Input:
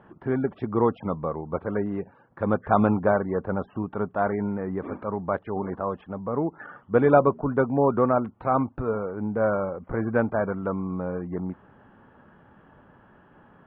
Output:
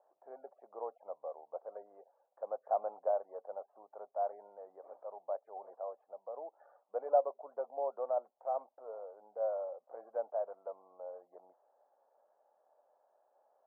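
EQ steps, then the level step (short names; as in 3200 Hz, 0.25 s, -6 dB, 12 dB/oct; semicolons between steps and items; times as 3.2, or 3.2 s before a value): Butterworth band-pass 630 Hz, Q 2.6; air absorption 500 m; differentiator; +14.0 dB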